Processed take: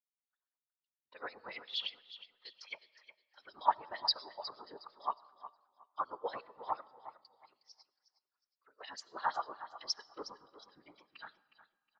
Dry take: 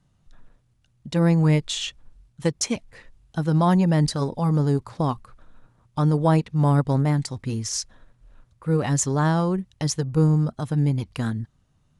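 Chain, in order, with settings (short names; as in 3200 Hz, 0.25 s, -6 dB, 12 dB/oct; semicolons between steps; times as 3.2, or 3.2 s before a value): HPF 370 Hz 12 dB/oct; resonant high shelf 5800 Hz -7 dB, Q 3; 6.85–8.81 compressor 5:1, threshold -42 dBFS, peak gain reduction 17.5 dB; LFO band-pass sine 8.6 Hz 960–5100 Hz; added harmonics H 4 -31 dB, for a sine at -9.5 dBFS; whisperiser; feedback echo 0.363 s, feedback 36%, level -9.5 dB; reverb RT60 2.2 s, pre-delay 35 ms, DRR 14 dB; spectral expander 1.5:1; gain +1 dB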